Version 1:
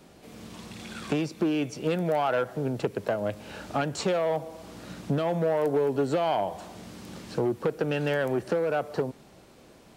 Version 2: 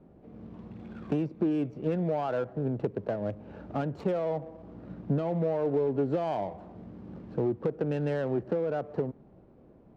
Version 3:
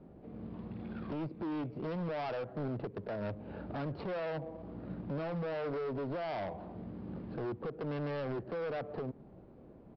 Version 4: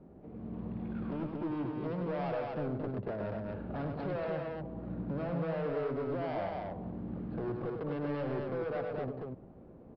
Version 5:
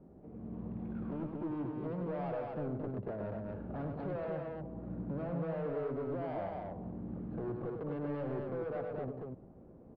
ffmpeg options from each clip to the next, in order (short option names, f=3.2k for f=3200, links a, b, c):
-af "tiltshelf=f=820:g=6.5,adynamicsmooth=sensitivity=4.5:basefreq=1.4k,volume=-6dB"
-af "alimiter=level_in=1.5dB:limit=-24dB:level=0:latency=1:release=218,volume=-1.5dB,aresample=11025,asoftclip=type=hard:threshold=-35.5dB,aresample=44100,volume=1dB"
-filter_complex "[0:a]aemphasis=mode=reproduction:type=75kf,asplit=2[a][b];[b]aecho=0:1:99.13|233.2:0.501|0.708[c];[a][c]amix=inputs=2:normalize=0"
-af "lowpass=f=1.3k:p=1,volume=-2dB"